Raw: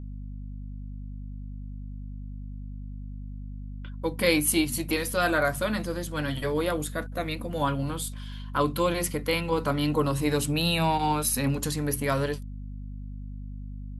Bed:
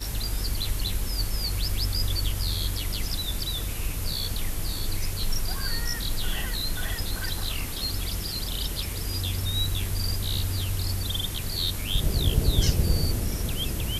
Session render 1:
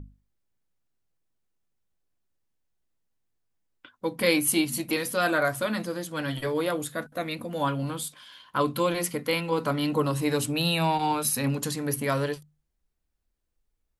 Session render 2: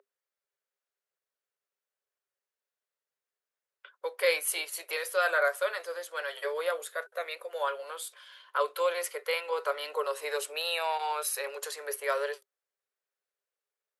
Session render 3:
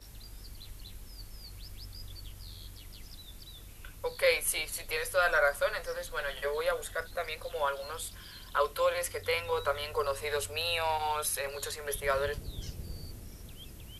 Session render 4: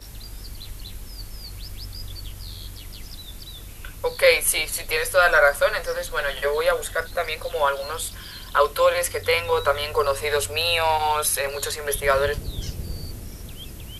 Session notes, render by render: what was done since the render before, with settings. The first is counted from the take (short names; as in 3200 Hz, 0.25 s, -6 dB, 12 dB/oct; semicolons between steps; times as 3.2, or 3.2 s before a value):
notches 50/100/150/200/250 Hz
rippled Chebyshev high-pass 390 Hz, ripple 6 dB
add bed -19 dB
gain +10 dB